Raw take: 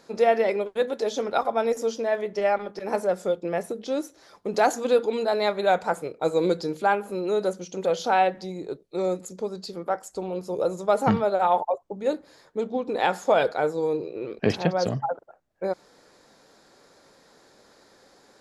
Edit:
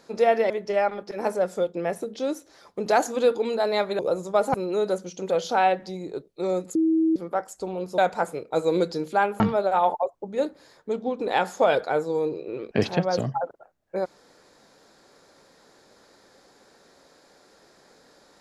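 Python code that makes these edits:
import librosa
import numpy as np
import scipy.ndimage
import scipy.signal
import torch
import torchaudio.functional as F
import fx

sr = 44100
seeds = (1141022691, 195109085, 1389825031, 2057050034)

y = fx.edit(x, sr, fx.cut(start_s=0.5, length_s=1.68),
    fx.swap(start_s=5.67, length_s=1.42, other_s=10.53, other_length_s=0.55),
    fx.bleep(start_s=9.3, length_s=0.41, hz=322.0, db=-17.5), tone=tone)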